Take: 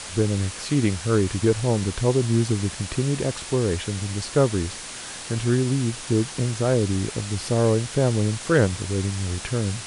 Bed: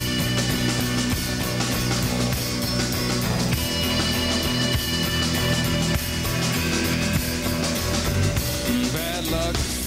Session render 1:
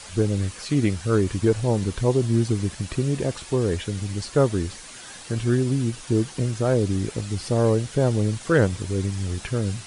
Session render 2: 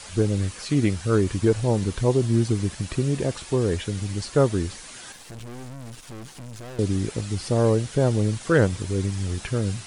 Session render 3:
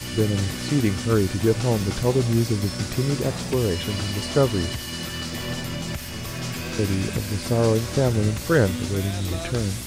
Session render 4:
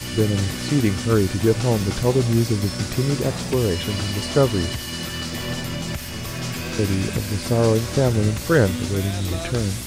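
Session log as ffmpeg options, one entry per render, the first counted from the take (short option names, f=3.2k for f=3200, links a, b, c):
-af "afftdn=nr=8:nf=-36"
-filter_complex "[0:a]asettb=1/sr,asplit=3[a][b][c];[a]atrim=end=5.124[d];[b]atrim=start=5.12:end=6.79,asetpts=PTS-STARTPTS,afade=t=in:d=0.004:c=qsin,afade=t=out:st=1.666:d=0.004:c=qsin,aeval=exprs='(tanh(70.8*val(0)+0.8)-tanh(0.8))/70.8':c=same[e];[c]atrim=start=6.786[f];[d][e]acrossfade=d=0.004:c1=hsin:c2=qsin[g];[g][f]acrossfade=d=0.004:c1=qsin:c2=hsin"
-filter_complex "[1:a]volume=-8dB[a];[0:a][a]amix=inputs=2:normalize=0"
-af "volume=2dB"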